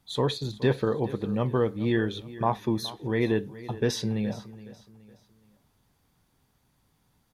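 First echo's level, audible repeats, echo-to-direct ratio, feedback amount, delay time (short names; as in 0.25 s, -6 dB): -17.0 dB, 3, -16.5 dB, 37%, 0.42 s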